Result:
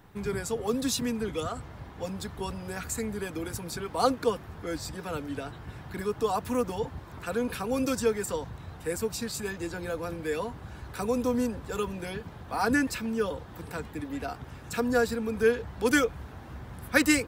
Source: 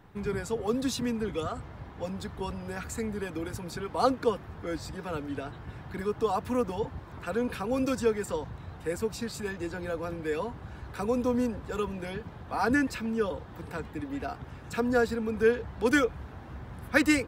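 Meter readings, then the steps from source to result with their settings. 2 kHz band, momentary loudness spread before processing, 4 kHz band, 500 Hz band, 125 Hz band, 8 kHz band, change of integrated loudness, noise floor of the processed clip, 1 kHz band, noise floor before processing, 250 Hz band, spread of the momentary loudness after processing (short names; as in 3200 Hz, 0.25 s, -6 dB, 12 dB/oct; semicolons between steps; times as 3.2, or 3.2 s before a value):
+1.0 dB, 13 LU, +3.5 dB, 0.0 dB, 0.0 dB, +6.5 dB, +0.5 dB, -46 dBFS, +0.5 dB, -46 dBFS, 0.0 dB, 13 LU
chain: high shelf 5200 Hz +9.5 dB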